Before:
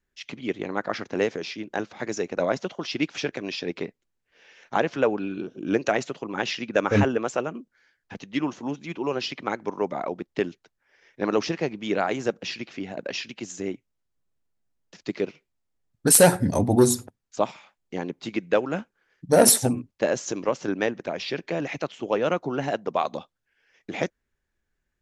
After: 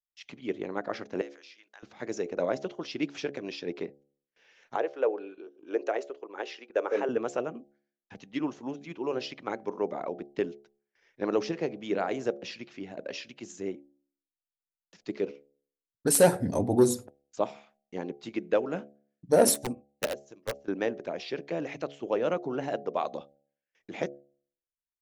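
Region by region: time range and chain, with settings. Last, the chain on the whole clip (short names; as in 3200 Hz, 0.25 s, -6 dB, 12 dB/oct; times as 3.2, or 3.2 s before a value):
1.21–1.83 HPF 1200 Hz + compressor 2:1, threshold -46 dBFS
4.76–7.09 Chebyshev high-pass 390 Hz, order 3 + gate -41 dBFS, range -8 dB + high shelf 2200 Hz -8 dB
19.54–20.68 wrapped overs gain 14 dB + upward expander 2.5:1, over -36 dBFS
whole clip: gate with hold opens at -50 dBFS; de-hum 70.84 Hz, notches 11; dynamic EQ 430 Hz, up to +6 dB, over -36 dBFS, Q 0.78; gain -8.5 dB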